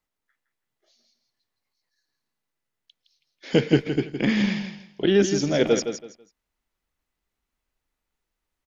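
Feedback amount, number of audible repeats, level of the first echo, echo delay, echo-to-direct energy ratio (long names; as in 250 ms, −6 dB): 23%, 3, −8.5 dB, 164 ms, −8.5 dB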